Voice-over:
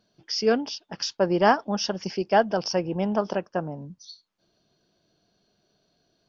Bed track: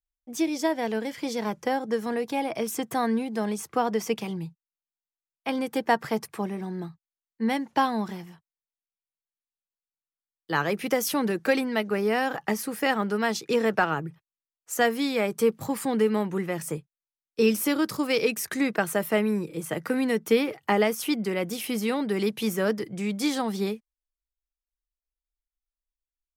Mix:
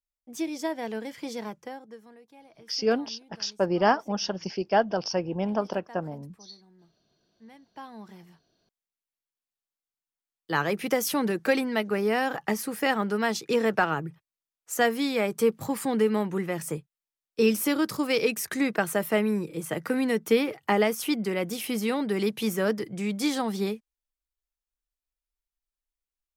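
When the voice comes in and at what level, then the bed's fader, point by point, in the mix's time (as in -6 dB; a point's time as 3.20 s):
2.40 s, -2.5 dB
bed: 1.38 s -5 dB
2.20 s -25 dB
7.60 s -25 dB
8.60 s -0.5 dB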